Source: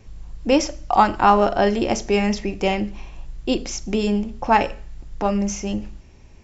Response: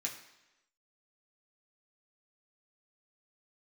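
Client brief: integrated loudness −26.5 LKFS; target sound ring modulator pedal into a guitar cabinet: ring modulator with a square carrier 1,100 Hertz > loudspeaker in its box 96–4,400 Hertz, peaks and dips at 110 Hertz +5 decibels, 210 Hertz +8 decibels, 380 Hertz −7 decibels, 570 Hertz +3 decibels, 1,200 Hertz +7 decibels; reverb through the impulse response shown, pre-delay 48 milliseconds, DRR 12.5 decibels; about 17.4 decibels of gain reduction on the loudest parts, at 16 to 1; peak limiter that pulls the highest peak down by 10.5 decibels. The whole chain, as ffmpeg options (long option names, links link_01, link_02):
-filter_complex "[0:a]acompressor=threshold=-26dB:ratio=16,alimiter=limit=-22.5dB:level=0:latency=1,asplit=2[link_01][link_02];[1:a]atrim=start_sample=2205,adelay=48[link_03];[link_02][link_03]afir=irnorm=-1:irlink=0,volume=-13dB[link_04];[link_01][link_04]amix=inputs=2:normalize=0,aeval=exprs='val(0)*sgn(sin(2*PI*1100*n/s))':channel_layout=same,highpass=96,equalizer=frequency=110:width_type=q:width=4:gain=5,equalizer=frequency=210:width_type=q:width=4:gain=8,equalizer=frequency=380:width_type=q:width=4:gain=-7,equalizer=frequency=570:width_type=q:width=4:gain=3,equalizer=frequency=1200:width_type=q:width=4:gain=7,lowpass=frequency=4400:width=0.5412,lowpass=frequency=4400:width=1.3066,volume=3dB"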